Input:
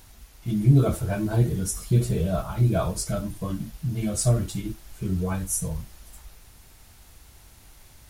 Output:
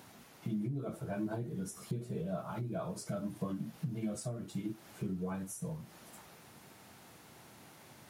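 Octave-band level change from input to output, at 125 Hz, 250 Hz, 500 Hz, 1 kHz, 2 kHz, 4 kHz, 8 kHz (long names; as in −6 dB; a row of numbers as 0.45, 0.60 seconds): −17.5, −10.5, −11.5, −10.5, −11.0, −14.0, −17.5 decibels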